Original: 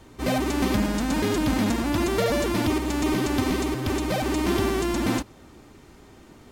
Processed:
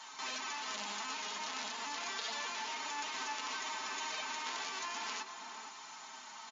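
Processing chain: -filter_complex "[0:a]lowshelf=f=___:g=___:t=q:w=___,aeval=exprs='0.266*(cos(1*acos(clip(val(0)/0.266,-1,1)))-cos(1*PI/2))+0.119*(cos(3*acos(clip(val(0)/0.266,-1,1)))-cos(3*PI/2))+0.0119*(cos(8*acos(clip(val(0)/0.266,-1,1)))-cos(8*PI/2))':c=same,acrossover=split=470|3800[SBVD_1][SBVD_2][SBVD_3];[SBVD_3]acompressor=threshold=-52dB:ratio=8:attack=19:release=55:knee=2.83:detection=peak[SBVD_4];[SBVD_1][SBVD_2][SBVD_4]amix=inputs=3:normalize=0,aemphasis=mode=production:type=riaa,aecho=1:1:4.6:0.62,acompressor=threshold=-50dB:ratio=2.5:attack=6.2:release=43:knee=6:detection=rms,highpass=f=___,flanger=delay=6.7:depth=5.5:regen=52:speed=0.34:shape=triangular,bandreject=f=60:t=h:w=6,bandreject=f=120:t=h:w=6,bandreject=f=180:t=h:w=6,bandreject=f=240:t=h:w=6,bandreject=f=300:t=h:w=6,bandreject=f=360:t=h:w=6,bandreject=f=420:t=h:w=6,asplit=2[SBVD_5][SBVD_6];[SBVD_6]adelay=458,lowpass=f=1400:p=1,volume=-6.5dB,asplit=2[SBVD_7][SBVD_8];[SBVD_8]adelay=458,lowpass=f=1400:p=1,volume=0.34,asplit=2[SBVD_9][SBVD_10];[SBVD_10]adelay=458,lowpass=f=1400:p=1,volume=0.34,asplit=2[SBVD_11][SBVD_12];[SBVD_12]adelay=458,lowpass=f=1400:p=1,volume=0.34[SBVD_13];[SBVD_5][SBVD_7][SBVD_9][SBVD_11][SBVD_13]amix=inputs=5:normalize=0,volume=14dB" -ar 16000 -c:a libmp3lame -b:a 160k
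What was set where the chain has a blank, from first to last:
650, -11, 3, 160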